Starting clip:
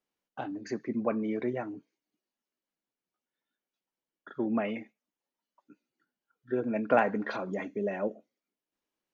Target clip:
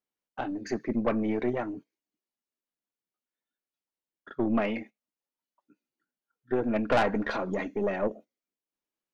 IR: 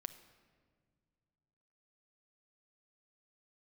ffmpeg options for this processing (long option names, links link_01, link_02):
-af "agate=range=-10dB:threshold=-48dB:ratio=16:detection=peak,aeval=exprs='(tanh(15.8*val(0)+0.5)-tanh(0.5))/15.8':channel_layout=same,volume=6dB"